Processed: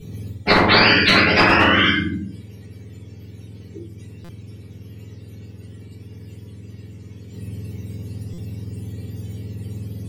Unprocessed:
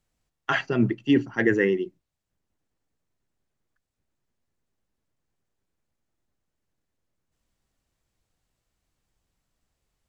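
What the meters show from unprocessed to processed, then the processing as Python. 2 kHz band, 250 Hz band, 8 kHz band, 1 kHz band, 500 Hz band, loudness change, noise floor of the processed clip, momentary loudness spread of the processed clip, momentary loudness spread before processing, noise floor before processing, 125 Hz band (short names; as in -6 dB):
+14.0 dB, +4.0 dB, n/a, +17.0 dB, +5.0 dB, +9.5 dB, -41 dBFS, 21 LU, 10 LU, -82 dBFS, +10.5 dB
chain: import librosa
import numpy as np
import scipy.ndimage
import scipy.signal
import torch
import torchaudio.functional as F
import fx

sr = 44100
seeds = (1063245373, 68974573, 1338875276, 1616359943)

p1 = fx.octave_mirror(x, sr, pivot_hz=760.0)
p2 = fx.band_shelf(p1, sr, hz=980.0, db=-12.0, octaves=1.7)
p3 = fx.env_lowpass_down(p2, sr, base_hz=1200.0, full_db=-23.0)
p4 = np.clip(10.0 ** (20.0 / 20.0) * p3, -1.0, 1.0) / 10.0 ** (20.0 / 20.0)
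p5 = p3 + (p4 * librosa.db_to_amplitude(-5.5))
p6 = fx.high_shelf(p5, sr, hz=3000.0, db=-8.5)
p7 = fx.room_shoebox(p6, sr, seeds[0], volume_m3=43.0, walls='mixed', distance_m=1.7)
p8 = fx.buffer_glitch(p7, sr, at_s=(4.24, 8.33), block=256, repeats=8)
p9 = fx.spectral_comp(p8, sr, ratio=10.0)
y = p9 * librosa.db_to_amplitude(-1.5)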